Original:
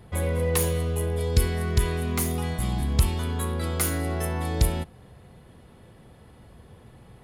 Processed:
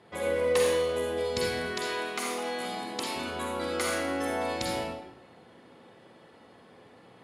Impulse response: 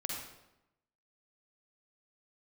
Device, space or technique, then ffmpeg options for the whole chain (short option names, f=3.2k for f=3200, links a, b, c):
supermarket ceiling speaker: -filter_complex "[0:a]asettb=1/sr,asplit=3[a][b][c];[a]atrim=end=1.594[d];[b]atrim=start=1.59:end=3.16,asetpts=PTS-STARTPTS,afade=t=in:d=0.004:c=qsin,afade=t=out:st=1.566:d=0.004:c=qsin,highpass=300[e];[c]atrim=start=3.156[f];[d][e]acrossfade=d=0.004:c1=hsin:c2=qsin[g];[g][f]acrossfade=d=0.004:c1=qsin:c2=hsin,highpass=310,lowpass=6.5k[h];[1:a]atrim=start_sample=2205[i];[h][i]afir=irnorm=-1:irlink=0"